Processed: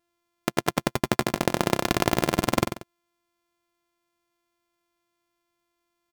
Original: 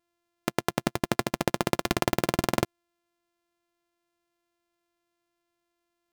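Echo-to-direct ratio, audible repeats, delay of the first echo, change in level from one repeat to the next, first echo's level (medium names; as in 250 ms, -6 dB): -8.5 dB, 2, 92 ms, -9.5 dB, -9.0 dB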